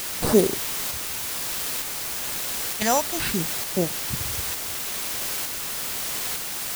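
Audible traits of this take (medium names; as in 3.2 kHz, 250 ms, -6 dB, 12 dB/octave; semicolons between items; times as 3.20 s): aliases and images of a low sample rate 6.6 kHz; phasing stages 2, 0.59 Hz, lowest notch 360–2600 Hz; a quantiser's noise floor 6-bit, dither triangular; tremolo saw up 1.1 Hz, depth 30%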